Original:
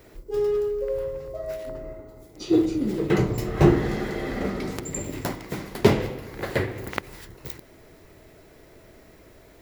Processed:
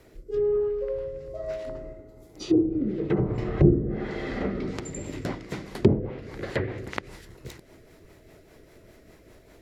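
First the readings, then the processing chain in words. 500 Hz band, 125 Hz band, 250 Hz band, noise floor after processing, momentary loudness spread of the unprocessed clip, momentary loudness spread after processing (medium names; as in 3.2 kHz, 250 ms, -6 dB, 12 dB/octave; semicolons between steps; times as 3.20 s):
-2.0 dB, -0.5 dB, -1.5 dB, -54 dBFS, 18 LU, 19 LU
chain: rotary cabinet horn 1.1 Hz, later 5 Hz, at 4.35 s; low-pass that closes with the level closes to 410 Hz, closed at -17.5 dBFS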